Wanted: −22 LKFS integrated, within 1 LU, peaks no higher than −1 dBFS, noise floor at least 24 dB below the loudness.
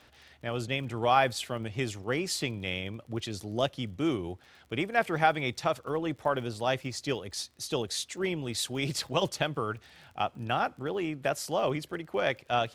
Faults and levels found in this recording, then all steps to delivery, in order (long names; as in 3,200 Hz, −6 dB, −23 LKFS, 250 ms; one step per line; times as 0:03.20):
crackle rate 28 per second; integrated loudness −31.0 LKFS; sample peak −9.0 dBFS; target loudness −22.0 LKFS
→ click removal
level +9 dB
brickwall limiter −1 dBFS